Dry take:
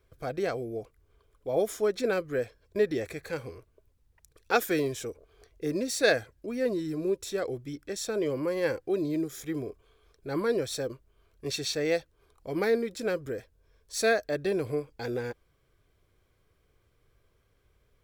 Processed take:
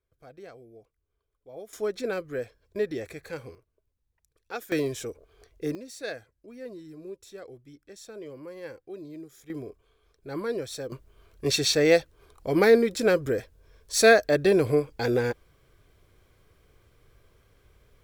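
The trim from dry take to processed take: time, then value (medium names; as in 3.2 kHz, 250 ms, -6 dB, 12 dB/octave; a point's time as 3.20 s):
-15.5 dB
from 1.73 s -2.5 dB
from 3.55 s -11 dB
from 4.72 s +1 dB
from 5.75 s -12 dB
from 9.50 s -3 dB
from 10.92 s +8 dB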